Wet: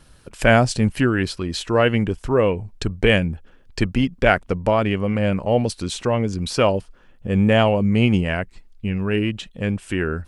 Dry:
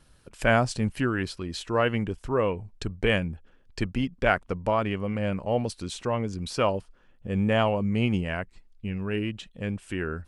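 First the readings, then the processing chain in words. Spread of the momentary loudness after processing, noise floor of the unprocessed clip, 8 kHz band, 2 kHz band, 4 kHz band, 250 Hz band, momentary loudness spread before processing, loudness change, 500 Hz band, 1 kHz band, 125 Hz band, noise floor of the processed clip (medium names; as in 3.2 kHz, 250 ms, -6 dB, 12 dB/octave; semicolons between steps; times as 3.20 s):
11 LU, -59 dBFS, +8.0 dB, +6.5 dB, +8.0 dB, +8.0 dB, 11 LU, +7.5 dB, +7.5 dB, +5.0 dB, +8.0 dB, -51 dBFS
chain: dynamic bell 1.1 kHz, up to -5 dB, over -38 dBFS, Q 1.7; trim +8 dB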